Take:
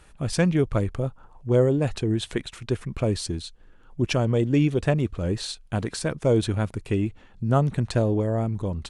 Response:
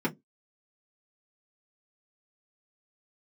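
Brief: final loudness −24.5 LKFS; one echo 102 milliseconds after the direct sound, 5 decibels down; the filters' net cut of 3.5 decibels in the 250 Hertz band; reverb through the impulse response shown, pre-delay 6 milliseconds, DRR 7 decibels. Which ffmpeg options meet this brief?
-filter_complex "[0:a]equalizer=frequency=250:width_type=o:gain=-5,aecho=1:1:102:0.562,asplit=2[link_01][link_02];[1:a]atrim=start_sample=2205,adelay=6[link_03];[link_02][link_03]afir=irnorm=-1:irlink=0,volume=-15dB[link_04];[link_01][link_04]amix=inputs=2:normalize=0,volume=-1.5dB"

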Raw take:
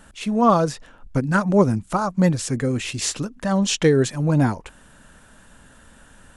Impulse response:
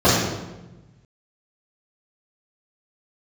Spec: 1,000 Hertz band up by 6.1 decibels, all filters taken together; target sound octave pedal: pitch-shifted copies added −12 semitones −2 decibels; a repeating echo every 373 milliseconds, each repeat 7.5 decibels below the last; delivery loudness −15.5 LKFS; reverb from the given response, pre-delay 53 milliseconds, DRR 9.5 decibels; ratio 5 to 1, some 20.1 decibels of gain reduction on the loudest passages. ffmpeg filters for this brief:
-filter_complex "[0:a]equalizer=frequency=1000:width_type=o:gain=7.5,acompressor=threshold=-31dB:ratio=5,aecho=1:1:373|746|1119|1492|1865:0.422|0.177|0.0744|0.0312|0.0131,asplit=2[link_01][link_02];[1:a]atrim=start_sample=2205,adelay=53[link_03];[link_02][link_03]afir=irnorm=-1:irlink=0,volume=-34.5dB[link_04];[link_01][link_04]amix=inputs=2:normalize=0,asplit=2[link_05][link_06];[link_06]asetrate=22050,aresample=44100,atempo=2,volume=-2dB[link_07];[link_05][link_07]amix=inputs=2:normalize=0,volume=14.5dB"

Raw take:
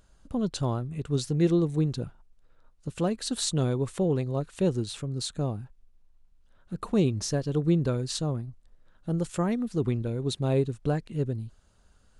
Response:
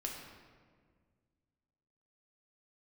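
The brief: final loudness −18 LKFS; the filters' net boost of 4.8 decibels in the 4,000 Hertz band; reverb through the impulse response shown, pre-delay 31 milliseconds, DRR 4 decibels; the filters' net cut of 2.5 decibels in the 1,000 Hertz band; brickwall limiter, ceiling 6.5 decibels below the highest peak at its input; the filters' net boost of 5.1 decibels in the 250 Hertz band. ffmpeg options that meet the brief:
-filter_complex "[0:a]equalizer=frequency=250:width_type=o:gain=7.5,equalizer=frequency=1000:width_type=o:gain=-4.5,equalizer=frequency=4000:width_type=o:gain=5.5,alimiter=limit=-16dB:level=0:latency=1,asplit=2[link_01][link_02];[1:a]atrim=start_sample=2205,adelay=31[link_03];[link_02][link_03]afir=irnorm=-1:irlink=0,volume=-4dB[link_04];[link_01][link_04]amix=inputs=2:normalize=0,volume=7dB"

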